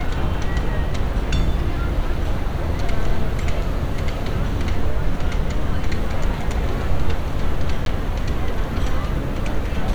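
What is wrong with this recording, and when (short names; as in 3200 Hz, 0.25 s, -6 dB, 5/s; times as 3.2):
7.85–7.86 gap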